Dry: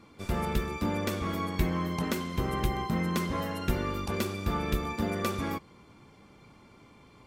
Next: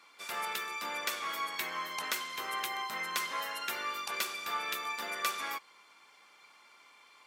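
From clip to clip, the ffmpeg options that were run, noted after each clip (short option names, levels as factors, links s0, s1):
-af "highpass=1200,volume=1.5"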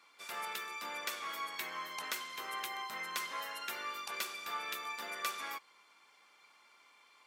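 -af "lowshelf=f=65:g=-9.5,volume=0.596"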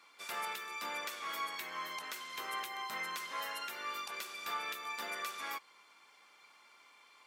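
-af "alimiter=level_in=2:limit=0.0631:level=0:latency=1:release=279,volume=0.501,volume=1.26"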